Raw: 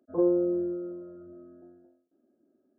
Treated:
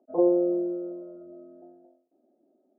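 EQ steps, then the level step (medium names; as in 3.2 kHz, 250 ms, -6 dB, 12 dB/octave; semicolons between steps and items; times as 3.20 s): high-pass 200 Hz 12 dB/octave; resonant low-pass 760 Hz, resonance Q 3.5; 0.0 dB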